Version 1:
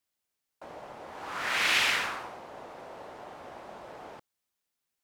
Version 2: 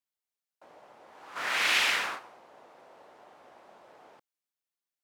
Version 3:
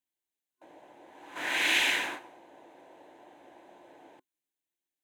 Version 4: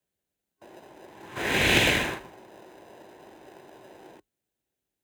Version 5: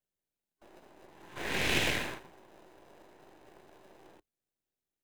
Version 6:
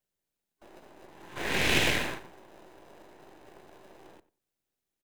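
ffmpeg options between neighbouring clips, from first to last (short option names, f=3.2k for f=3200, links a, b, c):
-af "highpass=f=270:p=1,agate=range=-9dB:threshold=-36dB:ratio=16:detection=peak"
-af "superequalizer=6b=2.82:10b=0.316:14b=0.398"
-filter_complex "[0:a]asplit=2[a][b];[b]acrusher=samples=40:mix=1:aa=0.000001,volume=-3dB[c];[a][c]amix=inputs=2:normalize=0,afreqshift=35,volume=3dB"
-af "aeval=exprs='if(lt(val(0),0),0.251*val(0),val(0))':c=same,volume=-5dB"
-filter_complex "[0:a]asplit=2[a][b];[b]adelay=93,lowpass=f=2.1k:p=1,volume=-17dB,asplit=2[c][d];[d]adelay=93,lowpass=f=2.1k:p=1,volume=0.2[e];[a][c][e]amix=inputs=3:normalize=0,volume=4dB"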